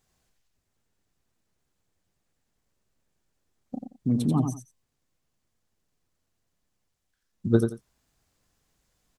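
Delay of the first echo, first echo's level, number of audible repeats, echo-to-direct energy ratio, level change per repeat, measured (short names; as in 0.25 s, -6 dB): 88 ms, -6.0 dB, 2, -6.0 dB, -13.5 dB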